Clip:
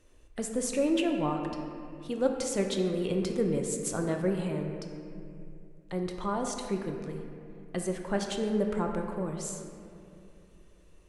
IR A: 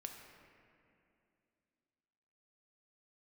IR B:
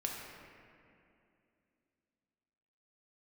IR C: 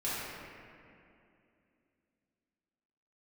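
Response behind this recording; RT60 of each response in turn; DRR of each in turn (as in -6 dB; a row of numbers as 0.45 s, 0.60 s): A; 2.6 s, 2.6 s, 2.6 s; 2.5 dB, -1.5 dB, -10.5 dB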